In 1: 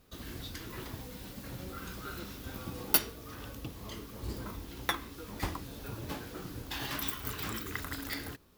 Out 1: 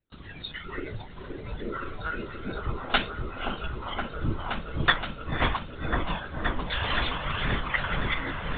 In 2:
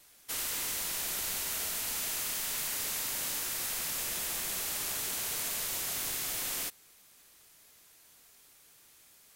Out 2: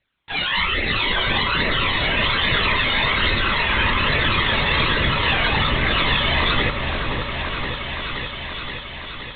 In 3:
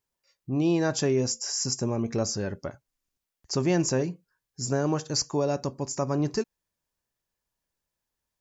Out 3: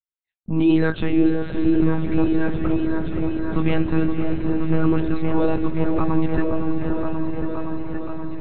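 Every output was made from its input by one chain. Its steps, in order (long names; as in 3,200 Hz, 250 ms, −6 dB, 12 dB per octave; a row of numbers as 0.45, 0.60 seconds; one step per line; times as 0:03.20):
low-shelf EQ 230 Hz −3 dB
flanger 1.2 Hz, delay 0.4 ms, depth 1 ms, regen −19%
pitch vibrato 0.3 Hz 7.1 cents
dynamic equaliser 670 Hz, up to −7 dB, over −53 dBFS, Q 2.8
noise gate with hold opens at −51 dBFS
feedback delay with all-pass diffusion 541 ms, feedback 65%, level −10 dB
one-pitch LPC vocoder at 8 kHz 160 Hz
noise reduction from a noise print of the clip's start 11 dB
on a send: echo whose low-pass opens from repeat to repeat 522 ms, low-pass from 750 Hz, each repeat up 1 octave, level −3 dB
on the sum: normalise the peak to −6 dBFS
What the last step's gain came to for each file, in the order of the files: +15.0, +27.5, +11.5 decibels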